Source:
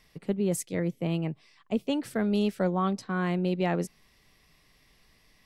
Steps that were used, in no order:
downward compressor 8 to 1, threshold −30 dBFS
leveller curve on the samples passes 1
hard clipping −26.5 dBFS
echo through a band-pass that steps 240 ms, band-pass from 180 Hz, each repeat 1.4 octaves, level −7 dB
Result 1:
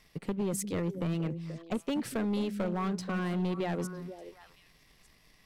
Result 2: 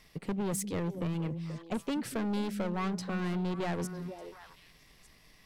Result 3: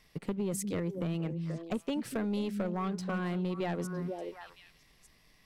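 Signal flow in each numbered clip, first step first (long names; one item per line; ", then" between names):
downward compressor, then leveller curve on the samples, then echo through a band-pass that steps, then hard clipping
hard clipping, then leveller curve on the samples, then echo through a band-pass that steps, then downward compressor
leveller curve on the samples, then echo through a band-pass that steps, then downward compressor, then hard clipping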